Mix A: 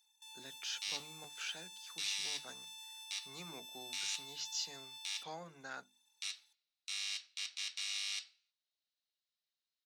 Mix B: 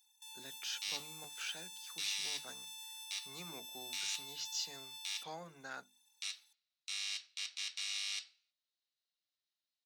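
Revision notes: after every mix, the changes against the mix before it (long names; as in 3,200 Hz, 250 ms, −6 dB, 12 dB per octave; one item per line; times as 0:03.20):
first sound: add high-shelf EQ 9,500 Hz +10.5 dB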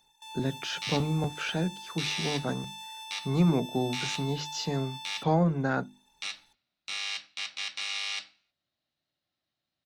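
master: remove first difference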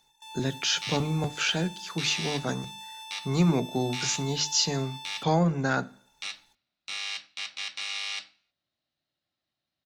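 speech: remove low-pass filter 1,400 Hz 6 dB per octave
reverb: on, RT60 0.60 s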